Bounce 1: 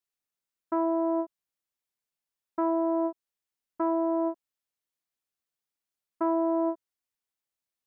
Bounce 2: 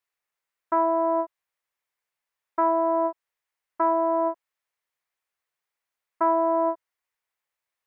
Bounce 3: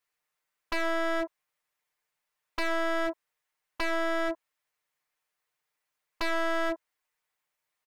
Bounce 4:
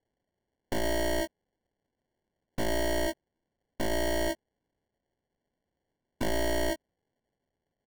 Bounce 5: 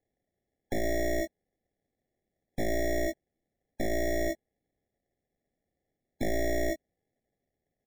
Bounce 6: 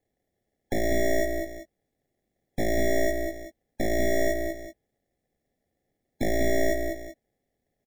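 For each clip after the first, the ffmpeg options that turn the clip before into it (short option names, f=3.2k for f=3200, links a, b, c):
-af "equalizer=f=250:t=o:w=1:g=-8,equalizer=f=500:t=o:w=1:g=5,equalizer=f=1k:t=o:w=1:g=7,equalizer=f=2k:t=o:w=1:g=9"
-af "aecho=1:1:6.6:0.64,aeval=exprs='0.0631*(abs(mod(val(0)/0.0631+3,4)-2)-1)':c=same,volume=1dB"
-af "acrusher=samples=35:mix=1:aa=0.000001"
-af "afftfilt=real='re*eq(mod(floor(b*sr/1024/820),2),0)':imag='im*eq(mod(floor(b*sr/1024/820),2),0)':win_size=1024:overlap=0.75"
-af "aecho=1:1:196|381:0.501|0.188,volume=4dB"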